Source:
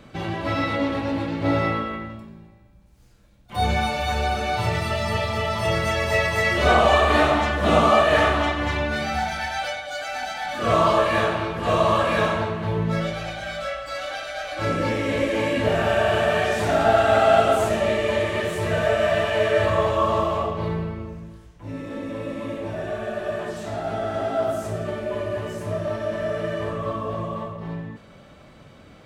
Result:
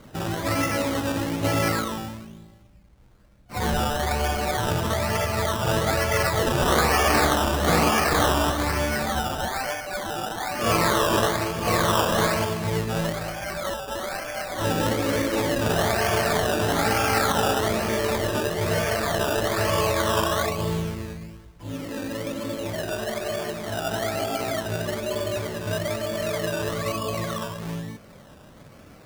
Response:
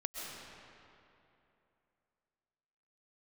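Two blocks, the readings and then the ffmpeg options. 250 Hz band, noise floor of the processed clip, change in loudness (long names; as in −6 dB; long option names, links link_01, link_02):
0.0 dB, −49 dBFS, −1.5 dB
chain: -af "afftfilt=real='re*lt(hypot(re,im),0.708)':imag='im*lt(hypot(re,im),0.708)':win_size=1024:overlap=0.75,acrusher=samples=16:mix=1:aa=0.000001:lfo=1:lforange=9.6:lforate=1.1"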